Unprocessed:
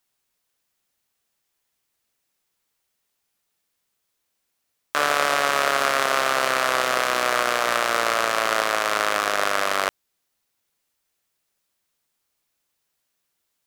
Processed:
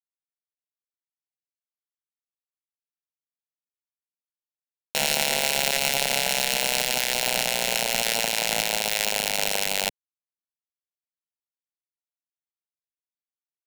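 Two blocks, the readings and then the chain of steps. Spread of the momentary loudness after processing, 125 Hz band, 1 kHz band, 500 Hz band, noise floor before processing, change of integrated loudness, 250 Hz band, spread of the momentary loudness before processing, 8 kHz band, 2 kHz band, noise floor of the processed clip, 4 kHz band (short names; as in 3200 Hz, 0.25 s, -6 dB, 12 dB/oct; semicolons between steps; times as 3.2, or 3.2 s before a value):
2 LU, +3.5 dB, -9.5 dB, -6.0 dB, -76 dBFS, -1.5 dB, -2.5 dB, 2 LU, +5.5 dB, -4.5 dB, under -85 dBFS, +3.0 dB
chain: sample sorter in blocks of 32 samples; sample gate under -18 dBFS; fixed phaser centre 320 Hz, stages 6; gain +1 dB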